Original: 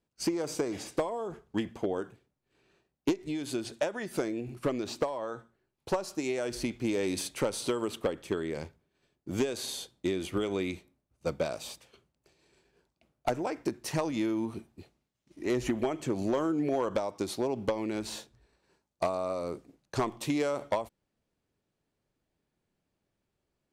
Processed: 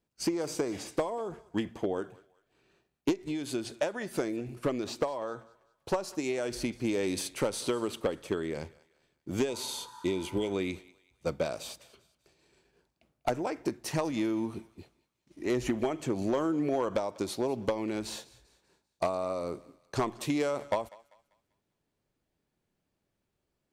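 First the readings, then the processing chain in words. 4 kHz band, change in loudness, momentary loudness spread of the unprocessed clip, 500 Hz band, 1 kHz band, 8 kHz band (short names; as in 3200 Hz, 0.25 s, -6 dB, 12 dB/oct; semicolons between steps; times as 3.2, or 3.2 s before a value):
0.0 dB, 0.0 dB, 8 LU, 0.0 dB, 0.0 dB, 0.0 dB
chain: spectral repair 9.51–10.48, 840–1900 Hz after; thinning echo 0.196 s, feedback 40%, high-pass 670 Hz, level -20 dB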